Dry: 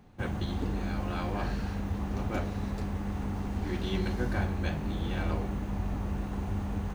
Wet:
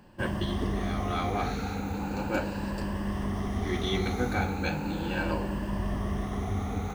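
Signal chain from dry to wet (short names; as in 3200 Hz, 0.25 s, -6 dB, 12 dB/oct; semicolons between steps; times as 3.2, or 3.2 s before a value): moving spectral ripple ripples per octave 1.3, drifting +0.37 Hz, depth 11 dB; low shelf 140 Hz -8 dB; gain +4 dB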